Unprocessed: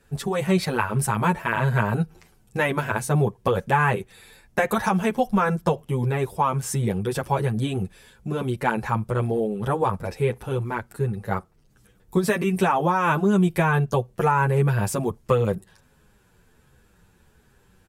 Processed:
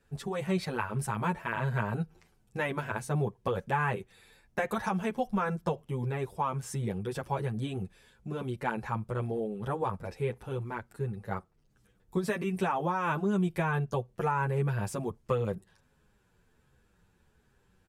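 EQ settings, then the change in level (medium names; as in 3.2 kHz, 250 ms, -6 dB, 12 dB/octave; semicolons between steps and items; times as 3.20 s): treble shelf 10 kHz -8 dB; -9.0 dB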